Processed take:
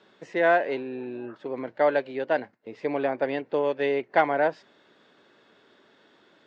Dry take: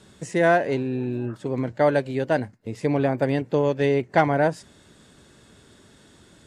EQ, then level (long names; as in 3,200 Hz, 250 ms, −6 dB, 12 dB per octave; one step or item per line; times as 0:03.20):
dynamic equaliser 3,300 Hz, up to +3 dB, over −36 dBFS, Q 0.85
band-pass filter 390–4,600 Hz
high-frequency loss of the air 140 metres
−1.0 dB